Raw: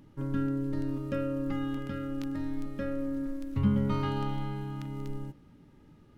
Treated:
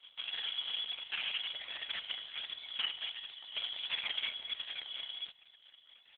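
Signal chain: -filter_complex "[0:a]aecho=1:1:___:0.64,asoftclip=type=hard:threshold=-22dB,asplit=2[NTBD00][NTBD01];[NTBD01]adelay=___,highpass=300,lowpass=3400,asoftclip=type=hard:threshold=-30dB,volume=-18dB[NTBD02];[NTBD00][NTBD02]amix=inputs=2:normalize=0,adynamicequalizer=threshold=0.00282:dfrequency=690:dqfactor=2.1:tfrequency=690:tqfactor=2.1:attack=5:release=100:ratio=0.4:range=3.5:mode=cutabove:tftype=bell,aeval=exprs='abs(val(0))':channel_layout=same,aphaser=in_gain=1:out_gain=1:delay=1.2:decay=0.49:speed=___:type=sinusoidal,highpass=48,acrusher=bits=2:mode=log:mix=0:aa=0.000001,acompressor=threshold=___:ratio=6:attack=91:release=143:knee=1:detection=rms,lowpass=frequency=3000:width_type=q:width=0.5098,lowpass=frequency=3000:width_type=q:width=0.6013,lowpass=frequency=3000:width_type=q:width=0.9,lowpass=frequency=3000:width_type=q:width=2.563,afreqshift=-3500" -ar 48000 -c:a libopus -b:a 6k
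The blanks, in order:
1.8, 250, 1.4, -36dB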